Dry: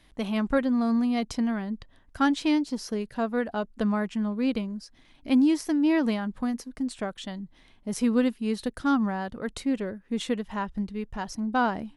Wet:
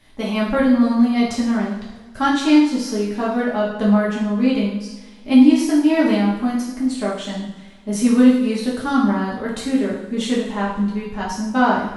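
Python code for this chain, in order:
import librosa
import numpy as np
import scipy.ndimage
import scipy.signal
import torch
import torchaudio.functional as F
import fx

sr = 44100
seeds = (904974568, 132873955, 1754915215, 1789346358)

y = fx.rev_double_slope(x, sr, seeds[0], early_s=0.75, late_s=2.3, knee_db=-18, drr_db=-6.5)
y = F.gain(torch.from_numpy(y), 1.5).numpy()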